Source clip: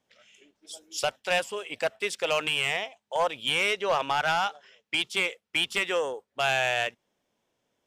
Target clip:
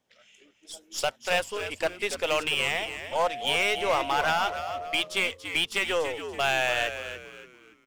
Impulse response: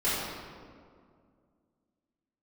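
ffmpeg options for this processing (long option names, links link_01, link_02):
-filter_complex "[0:a]aeval=exprs='0.141*(cos(1*acos(clip(val(0)/0.141,-1,1)))-cos(1*PI/2))+0.00708*(cos(8*acos(clip(val(0)/0.141,-1,1)))-cos(8*PI/2))':channel_layout=same,asettb=1/sr,asplit=3[link_01][link_02][link_03];[link_01]atrim=end=3.224[link_04];[link_02]atrim=start=3.22:end=5,asetpts=PTS-STARTPTS,afade=type=in:duration=0.004:curve=qsin,afade=type=out:start_time=1.776:duration=0.004:curve=qsin,aeval=exprs='val(0)+0.02*sin(2*PI*710*n/s)':channel_layout=same[link_05];[link_03]atrim=start=4.996[link_06];[link_04][link_05]acrossfade=duration=0.004:curve1=hsin:curve2=qsin[link_07];[link_07][link_06]acrossfade=duration=0.004:curve1=qsin:curve2=hsin,asplit=5[link_08][link_09][link_10][link_11][link_12];[link_09]adelay=286,afreqshift=-88,volume=-10dB[link_13];[link_10]adelay=572,afreqshift=-176,volume=-19.1dB[link_14];[link_11]adelay=858,afreqshift=-264,volume=-28.2dB[link_15];[link_12]adelay=1144,afreqshift=-352,volume=-37.4dB[link_16];[link_08][link_13][link_14][link_15][link_16]amix=inputs=5:normalize=0"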